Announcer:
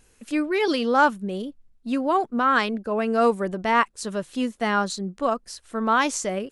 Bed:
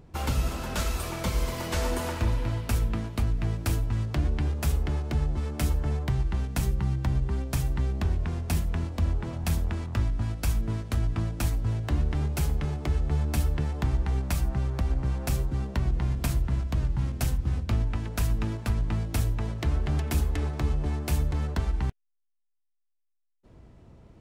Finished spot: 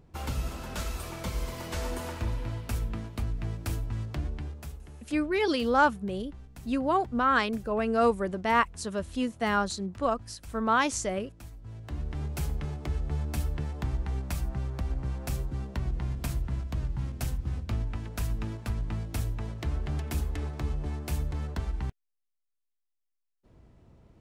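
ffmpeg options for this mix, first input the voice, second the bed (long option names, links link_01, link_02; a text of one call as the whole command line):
ffmpeg -i stem1.wav -i stem2.wav -filter_complex "[0:a]adelay=4800,volume=-4dB[link_01];[1:a]volume=8.5dB,afade=type=out:start_time=4.09:duration=0.7:silence=0.211349,afade=type=in:start_time=11.61:duration=0.74:silence=0.199526[link_02];[link_01][link_02]amix=inputs=2:normalize=0" out.wav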